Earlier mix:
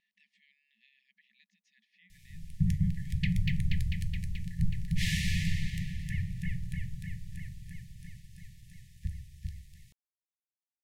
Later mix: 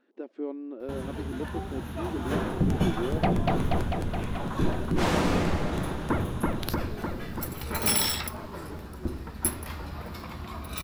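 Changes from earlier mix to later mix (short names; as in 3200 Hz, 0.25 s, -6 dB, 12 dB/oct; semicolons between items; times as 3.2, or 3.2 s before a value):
first sound: unmuted; master: remove brick-wall FIR band-stop 190–1700 Hz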